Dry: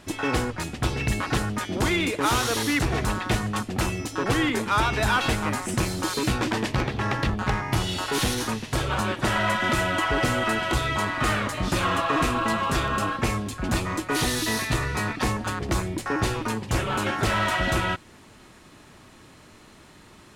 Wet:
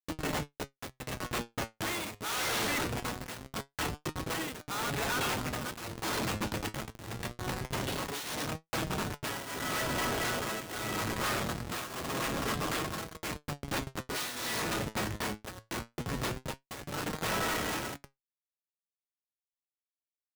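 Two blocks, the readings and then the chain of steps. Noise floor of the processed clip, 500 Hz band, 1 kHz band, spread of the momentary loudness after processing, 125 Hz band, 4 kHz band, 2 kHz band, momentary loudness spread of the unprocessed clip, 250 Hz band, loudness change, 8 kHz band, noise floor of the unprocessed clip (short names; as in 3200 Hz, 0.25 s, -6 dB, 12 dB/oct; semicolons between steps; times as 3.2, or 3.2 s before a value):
under -85 dBFS, -9.0 dB, -10.5 dB, 9 LU, -12.0 dB, -7.5 dB, -9.5 dB, 5 LU, -11.0 dB, -9.5 dB, -6.0 dB, -50 dBFS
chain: tilt shelf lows -8.5 dB, about 1100 Hz; notches 60/120/180/240/300/360 Hz; on a send: narrowing echo 0.522 s, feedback 44%, band-pass 1400 Hz, level -7 dB; on the sum: Schmitt trigger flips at -20.5 dBFS; flange 0.23 Hz, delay 6.1 ms, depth 3.6 ms, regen +70%; high shelf 3900 Hz +7 dB; tremolo triangle 0.82 Hz, depth 90%; HPF 130 Hz 6 dB/oct; soft clip -34.5 dBFS, distortion -7 dB; gain +5 dB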